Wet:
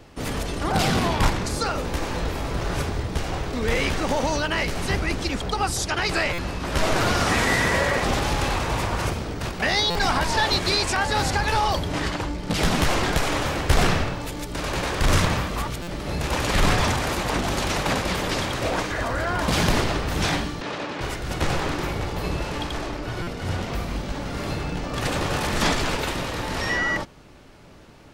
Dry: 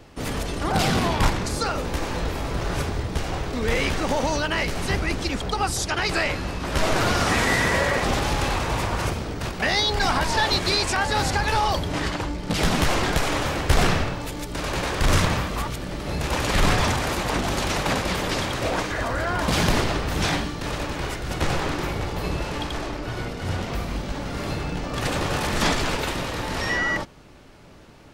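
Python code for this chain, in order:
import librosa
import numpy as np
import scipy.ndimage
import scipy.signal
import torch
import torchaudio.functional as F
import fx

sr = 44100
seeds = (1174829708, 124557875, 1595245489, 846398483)

y = fx.bandpass_edges(x, sr, low_hz=200.0, high_hz=4800.0, at=(20.61, 21.01))
y = fx.buffer_glitch(y, sr, at_s=(6.33, 9.9, 15.82, 23.22), block=256, repeats=8)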